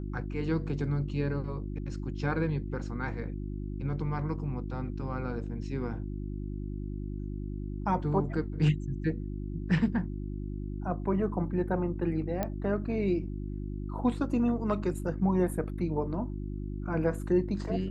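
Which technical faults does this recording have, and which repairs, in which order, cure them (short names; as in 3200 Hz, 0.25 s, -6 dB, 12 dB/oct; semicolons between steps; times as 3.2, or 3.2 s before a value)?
hum 50 Hz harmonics 7 -36 dBFS
12.43 pop -17 dBFS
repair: de-click; de-hum 50 Hz, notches 7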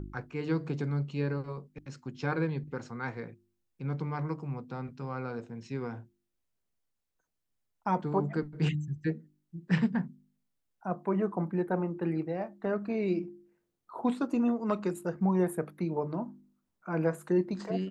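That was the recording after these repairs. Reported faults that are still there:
none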